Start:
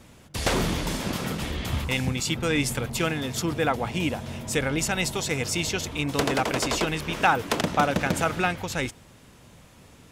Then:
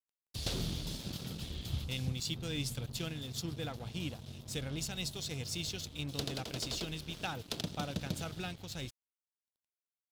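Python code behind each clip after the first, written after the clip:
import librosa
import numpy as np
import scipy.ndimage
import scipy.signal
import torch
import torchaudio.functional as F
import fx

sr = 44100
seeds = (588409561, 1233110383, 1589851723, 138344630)

y = fx.graphic_eq(x, sr, hz=(125, 250, 500, 1000, 2000, 4000, 8000), db=(4, -4, -4, -11, -11, 8, -4))
y = np.sign(y) * np.maximum(np.abs(y) - 10.0 ** (-41.5 / 20.0), 0.0)
y = y * 10.0 ** (-9.0 / 20.0)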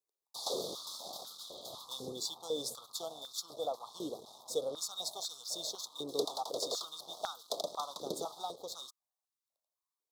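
y = scipy.signal.sosfilt(scipy.signal.cheby1(4, 1.0, [1200.0, 3600.0], 'bandstop', fs=sr, output='sos'), x)
y = fx.filter_held_highpass(y, sr, hz=4.0, low_hz=410.0, high_hz=1500.0)
y = y * 10.0 ** (1.5 / 20.0)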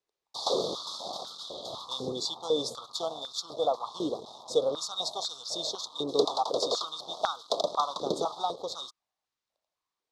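y = scipy.signal.sosfilt(scipy.signal.butter(2, 4700.0, 'lowpass', fs=sr, output='sos'), x)
y = fx.dynamic_eq(y, sr, hz=1100.0, q=2.6, threshold_db=-55.0, ratio=4.0, max_db=4)
y = y * 10.0 ** (9.0 / 20.0)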